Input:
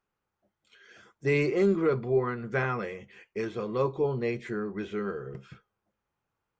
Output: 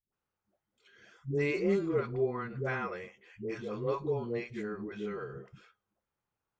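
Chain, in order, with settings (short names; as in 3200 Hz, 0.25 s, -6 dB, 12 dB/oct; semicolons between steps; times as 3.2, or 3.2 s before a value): dispersion highs, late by 0.132 s, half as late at 370 Hz; gain -5 dB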